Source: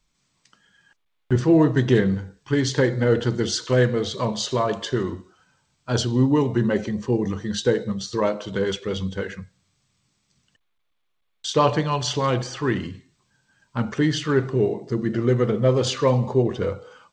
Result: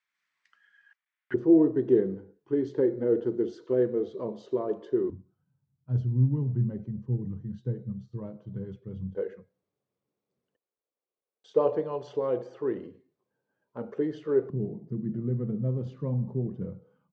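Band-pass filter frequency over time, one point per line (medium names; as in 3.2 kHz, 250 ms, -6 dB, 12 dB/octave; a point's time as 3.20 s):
band-pass filter, Q 3.1
1.8 kHz
from 1.34 s 370 Hz
from 5.10 s 130 Hz
from 9.15 s 460 Hz
from 14.50 s 170 Hz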